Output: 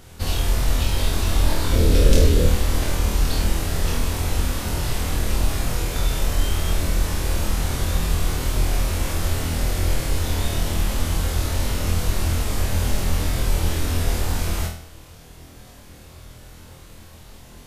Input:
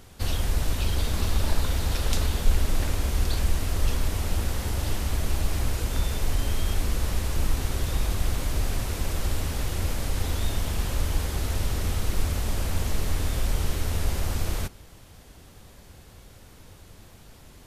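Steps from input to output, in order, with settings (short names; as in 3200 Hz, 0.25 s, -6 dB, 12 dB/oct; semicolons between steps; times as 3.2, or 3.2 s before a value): 1.73–2.46 resonant low shelf 630 Hz +7.5 dB, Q 3; on a send: flutter echo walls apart 4.2 m, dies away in 0.5 s; on the sum: gain +2.5 dB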